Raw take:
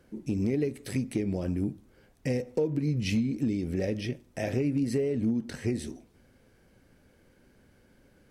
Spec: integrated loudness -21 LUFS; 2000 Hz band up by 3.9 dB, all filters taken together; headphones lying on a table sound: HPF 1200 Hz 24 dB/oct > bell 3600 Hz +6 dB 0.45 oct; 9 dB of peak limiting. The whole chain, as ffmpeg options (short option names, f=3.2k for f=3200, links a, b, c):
-af "equalizer=f=2k:t=o:g=4,alimiter=level_in=1dB:limit=-24dB:level=0:latency=1,volume=-1dB,highpass=f=1.2k:w=0.5412,highpass=f=1.2k:w=1.3066,equalizer=f=3.6k:t=o:w=0.45:g=6,volume=23.5dB"